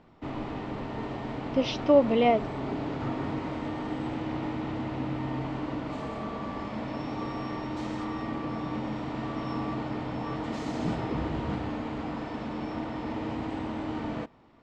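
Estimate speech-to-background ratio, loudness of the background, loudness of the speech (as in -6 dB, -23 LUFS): 9.5 dB, -34.0 LUFS, -24.5 LUFS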